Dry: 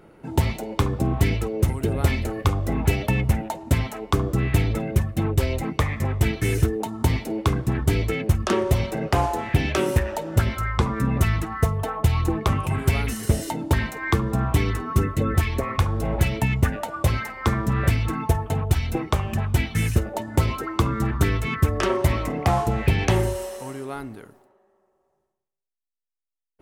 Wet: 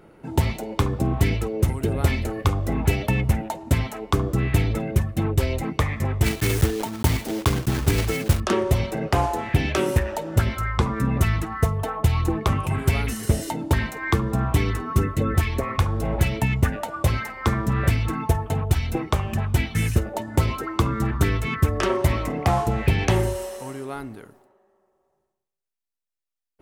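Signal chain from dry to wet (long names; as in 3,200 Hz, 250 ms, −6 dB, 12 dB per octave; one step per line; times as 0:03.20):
0:06.24–0:08.41: one scale factor per block 3 bits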